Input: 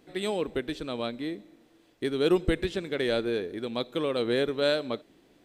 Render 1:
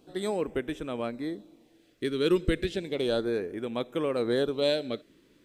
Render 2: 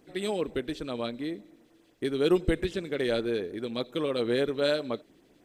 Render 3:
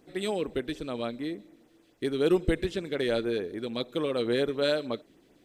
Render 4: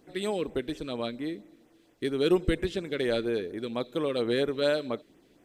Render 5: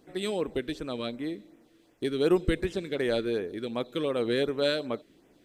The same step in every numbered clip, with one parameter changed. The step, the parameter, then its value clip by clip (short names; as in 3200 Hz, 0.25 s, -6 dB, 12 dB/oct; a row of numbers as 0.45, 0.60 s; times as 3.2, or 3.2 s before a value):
LFO notch, rate: 0.33, 10, 6.8, 4.3, 2.7 Hz